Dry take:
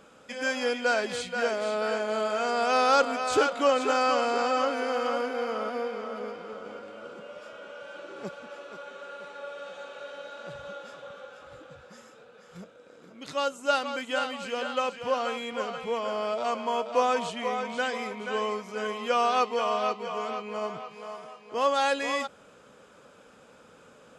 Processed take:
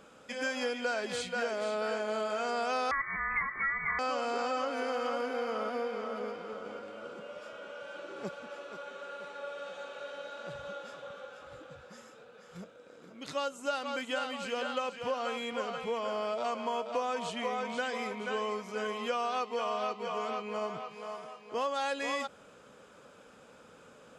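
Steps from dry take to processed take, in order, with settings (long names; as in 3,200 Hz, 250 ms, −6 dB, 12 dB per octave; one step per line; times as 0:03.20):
downward compressor 5 to 1, threshold −28 dBFS, peak gain reduction 10 dB
0:02.91–0:03.99: voice inversion scrambler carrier 2,500 Hz
level −1.5 dB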